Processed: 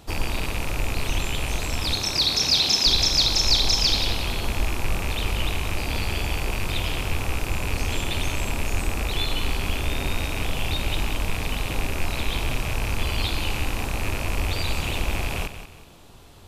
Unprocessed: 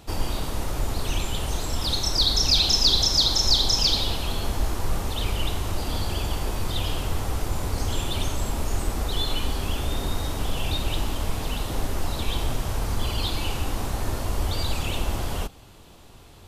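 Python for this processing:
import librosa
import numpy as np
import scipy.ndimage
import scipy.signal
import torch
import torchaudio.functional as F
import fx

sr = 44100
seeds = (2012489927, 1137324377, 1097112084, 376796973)

y = fx.rattle_buzz(x, sr, strikes_db=-34.0, level_db=-19.0)
y = fx.highpass(y, sr, hz=fx.line((1.94, 75.0), (2.85, 160.0)), slope=12, at=(1.94, 2.85), fade=0.02)
y = fx.echo_feedback(y, sr, ms=181, feedback_pct=33, wet_db=-11)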